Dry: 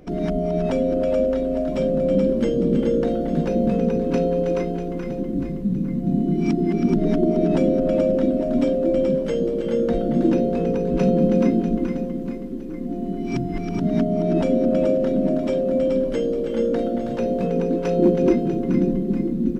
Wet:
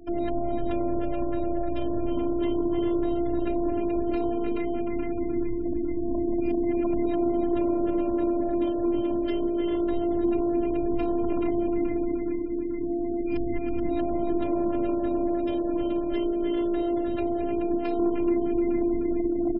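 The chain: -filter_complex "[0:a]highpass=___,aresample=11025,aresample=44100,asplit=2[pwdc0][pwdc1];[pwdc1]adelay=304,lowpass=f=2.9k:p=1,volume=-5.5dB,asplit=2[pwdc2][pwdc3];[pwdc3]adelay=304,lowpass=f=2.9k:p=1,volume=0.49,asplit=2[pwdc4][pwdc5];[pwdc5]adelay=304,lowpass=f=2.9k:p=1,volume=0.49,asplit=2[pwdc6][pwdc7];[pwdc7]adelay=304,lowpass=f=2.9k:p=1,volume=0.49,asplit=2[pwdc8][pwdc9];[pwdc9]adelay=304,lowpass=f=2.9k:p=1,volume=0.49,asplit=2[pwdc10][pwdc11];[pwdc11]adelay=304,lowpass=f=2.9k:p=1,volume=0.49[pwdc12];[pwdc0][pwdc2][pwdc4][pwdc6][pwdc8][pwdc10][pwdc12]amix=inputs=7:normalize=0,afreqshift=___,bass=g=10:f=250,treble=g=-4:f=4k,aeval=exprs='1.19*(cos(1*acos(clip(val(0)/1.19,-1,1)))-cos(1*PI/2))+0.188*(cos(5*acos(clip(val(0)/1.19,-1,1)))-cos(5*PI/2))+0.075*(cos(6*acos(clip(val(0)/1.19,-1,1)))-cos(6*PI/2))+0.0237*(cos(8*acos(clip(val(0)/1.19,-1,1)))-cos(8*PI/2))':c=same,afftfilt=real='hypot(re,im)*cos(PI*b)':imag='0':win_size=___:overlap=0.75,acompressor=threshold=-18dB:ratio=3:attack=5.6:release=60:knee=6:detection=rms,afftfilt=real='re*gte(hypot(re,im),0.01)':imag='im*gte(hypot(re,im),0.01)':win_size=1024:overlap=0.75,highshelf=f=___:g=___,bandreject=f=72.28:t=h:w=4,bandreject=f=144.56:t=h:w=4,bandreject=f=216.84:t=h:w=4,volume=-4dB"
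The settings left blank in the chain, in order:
42, -18, 512, 3.6k, 8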